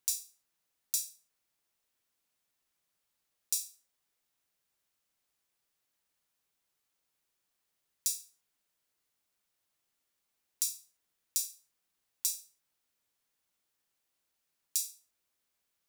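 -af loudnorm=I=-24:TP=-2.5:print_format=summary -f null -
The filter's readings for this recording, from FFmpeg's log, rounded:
Input Integrated:    -34.9 LUFS
Input True Peak:      -6.7 dBTP
Input LRA:             3.0 LU
Input Threshold:     -45.9 LUFS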